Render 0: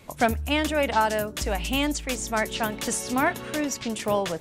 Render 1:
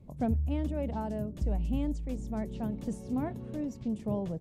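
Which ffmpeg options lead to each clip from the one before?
-af "firequalizer=gain_entry='entry(190,0);entry(290,-8);entry(1400,-28)':delay=0.05:min_phase=1,volume=1.19"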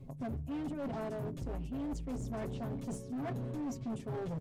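-af "aecho=1:1:7.4:1,areverse,acompressor=threshold=0.0141:ratio=20,areverse,asoftclip=type=hard:threshold=0.01,volume=1.78"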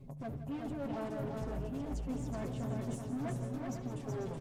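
-af "flanger=delay=4.7:depth=5:regen=-47:speed=0.56:shape=triangular,aecho=1:1:74|159|171|373|494:0.106|0.178|0.158|0.631|0.335,volume=1.33"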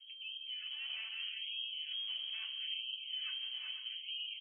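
-filter_complex "[0:a]lowpass=f=2800:t=q:w=0.5098,lowpass=f=2800:t=q:w=0.6013,lowpass=f=2800:t=q:w=0.9,lowpass=f=2800:t=q:w=2.563,afreqshift=-3300,asplit=2[s0][s1];[s1]adelay=41,volume=0.237[s2];[s0][s2]amix=inputs=2:normalize=0,afftfilt=real='re*gte(b*sr/1024,550*pow(2500/550,0.5+0.5*sin(2*PI*0.77*pts/sr)))':imag='im*gte(b*sr/1024,550*pow(2500/550,0.5+0.5*sin(2*PI*0.77*pts/sr)))':win_size=1024:overlap=0.75,volume=0.596"

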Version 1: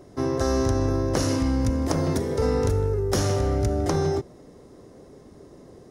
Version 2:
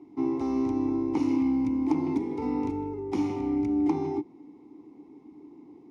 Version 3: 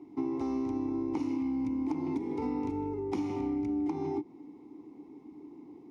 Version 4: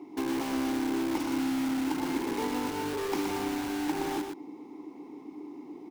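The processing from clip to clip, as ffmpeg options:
-filter_complex "[0:a]asplit=3[s0][s1][s2];[s0]bandpass=f=300:t=q:w=8,volume=1[s3];[s1]bandpass=f=870:t=q:w=8,volume=0.501[s4];[s2]bandpass=f=2240:t=q:w=8,volume=0.355[s5];[s3][s4][s5]amix=inputs=3:normalize=0,volume=2.37"
-af "acompressor=threshold=0.0355:ratio=6"
-filter_complex "[0:a]highpass=f=540:p=1,asplit=2[s0][s1];[s1]aeval=exprs='(mod(79.4*val(0)+1,2)-1)/79.4':c=same,volume=0.596[s2];[s0][s2]amix=inputs=2:normalize=0,aecho=1:1:121:0.501,volume=2"

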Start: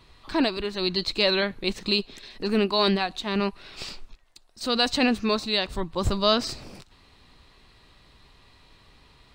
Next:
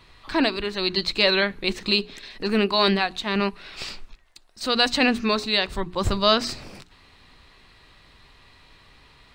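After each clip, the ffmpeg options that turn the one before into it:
-af "equalizer=f=1900:t=o:w=1.3:g=4.5,bandreject=f=60:t=h:w=6,bandreject=f=120:t=h:w=6,bandreject=f=180:t=h:w=6,bandreject=f=240:t=h:w=6,bandreject=f=300:t=h:w=6,bandreject=f=360:t=h:w=6,bandreject=f=420:t=h:w=6,volume=1.19"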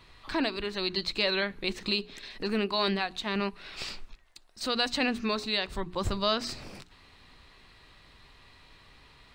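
-af "acompressor=threshold=0.0316:ratio=1.5,volume=0.708"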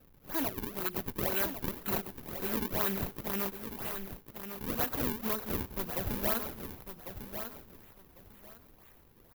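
-filter_complex "[0:a]acrusher=samples=39:mix=1:aa=0.000001:lfo=1:lforange=62.4:lforate=2,aexciter=amount=8.4:drive=2.4:freq=11000,asplit=2[s0][s1];[s1]aecho=0:1:1099|2198|3297:0.355|0.0745|0.0156[s2];[s0][s2]amix=inputs=2:normalize=0,volume=0.473"

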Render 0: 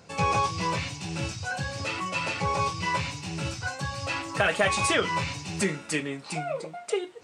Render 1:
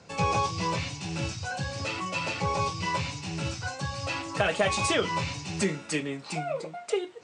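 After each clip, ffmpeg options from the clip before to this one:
-filter_complex "[0:a]lowpass=f=8400:w=0.5412,lowpass=f=8400:w=1.3066,acrossover=split=110|1300|2100[s0][s1][s2][s3];[s2]acompressor=threshold=0.00398:ratio=6[s4];[s0][s1][s4][s3]amix=inputs=4:normalize=0"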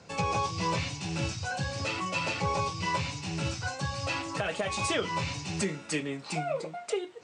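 -af "alimiter=limit=0.112:level=0:latency=1:release=366"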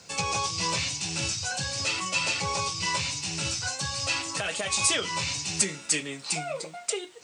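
-af "crystalizer=i=6:c=0,volume=0.668"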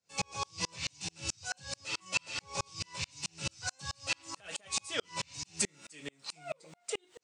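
-af "aeval=exprs='val(0)*pow(10,-39*if(lt(mod(-4.6*n/s,1),2*abs(-4.6)/1000),1-mod(-4.6*n/s,1)/(2*abs(-4.6)/1000),(mod(-4.6*n/s,1)-2*abs(-4.6)/1000)/(1-2*abs(-4.6)/1000))/20)':c=same,volume=0.891"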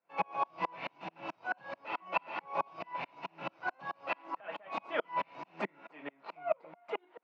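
-filter_complex "[0:a]asplit=2[s0][s1];[s1]acrusher=samples=24:mix=1:aa=0.000001,volume=0.282[s2];[s0][s2]amix=inputs=2:normalize=0,highpass=f=210:w=0.5412,highpass=f=210:w=1.3066,equalizer=f=230:t=q:w=4:g=-4,equalizer=f=420:t=q:w=4:g=-5,equalizer=f=660:t=q:w=4:g=7,equalizer=f=950:t=q:w=4:g=9,equalizer=f=1400:t=q:w=4:g=3,lowpass=f=2300:w=0.5412,lowpass=f=2300:w=1.3066,volume=1.12"

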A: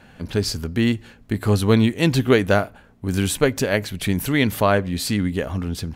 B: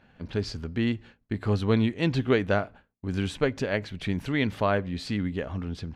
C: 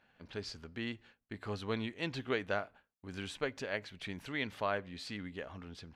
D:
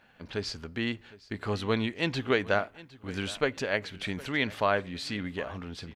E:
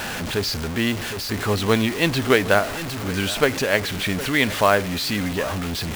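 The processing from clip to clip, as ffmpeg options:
-af "lowpass=4100,agate=range=0.0224:threshold=0.0158:ratio=3:detection=peak,acompressor=mode=upward:threshold=0.0112:ratio=2.5,volume=0.447"
-af "lowshelf=f=380:g=-12,volume=0.473"
-af "aecho=1:1:760|1520:0.1|0.027,volume=2.66"
-af "aeval=exprs='val(0)+0.5*0.0422*sgn(val(0))':c=same,aeval=exprs='0.316*(cos(1*acos(clip(val(0)/0.316,-1,1)))-cos(1*PI/2))+0.0158*(cos(7*acos(clip(val(0)/0.316,-1,1)))-cos(7*PI/2))':c=same,acrusher=bits=4:mode=log:mix=0:aa=0.000001,volume=2.37"

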